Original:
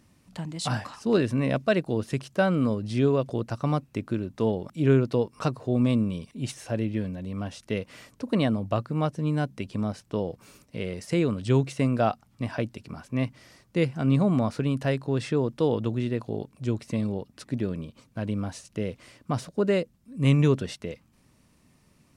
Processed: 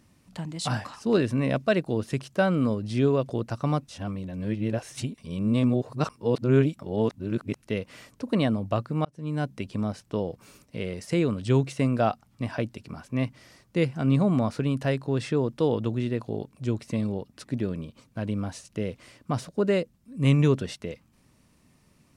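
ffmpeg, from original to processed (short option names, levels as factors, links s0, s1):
-filter_complex "[0:a]asplit=4[s0][s1][s2][s3];[s0]atrim=end=3.872[s4];[s1]atrim=start=3.868:end=7.622,asetpts=PTS-STARTPTS,areverse[s5];[s2]atrim=start=7.618:end=9.05,asetpts=PTS-STARTPTS,afade=t=out:st=1.428:d=0.004:c=hsin[s6];[s3]atrim=start=9.05,asetpts=PTS-STARTPTS,afade=t=in:d=0.42[s7];[s4][s5]acrossfade=d=0.004:c1=hsin:c2=hsin[s8];[s6][s7]concat=n=2:v=0:a=1[s9];[s8][s9]acrossfade=d=0.004:c1=hsin:c2=hsin"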